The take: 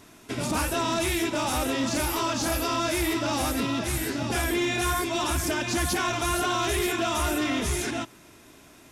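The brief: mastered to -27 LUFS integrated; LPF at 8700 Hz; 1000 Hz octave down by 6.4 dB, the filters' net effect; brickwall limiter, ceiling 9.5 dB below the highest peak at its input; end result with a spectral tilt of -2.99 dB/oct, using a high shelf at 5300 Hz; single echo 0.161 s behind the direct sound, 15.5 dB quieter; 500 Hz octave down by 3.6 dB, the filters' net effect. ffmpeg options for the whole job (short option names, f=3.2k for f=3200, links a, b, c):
-af "lowpass=8.7k,equalizer=f=500:t=o:g=-3,equalizer=f=1k:t=o:g=-8,highshelf=f=5.3k:g=6.5,alimiter=level_in=1dB:limit=-24dB:level=0:latency=1,volume=-1dB,aecho=1:1:161:0.168,volume=5dB"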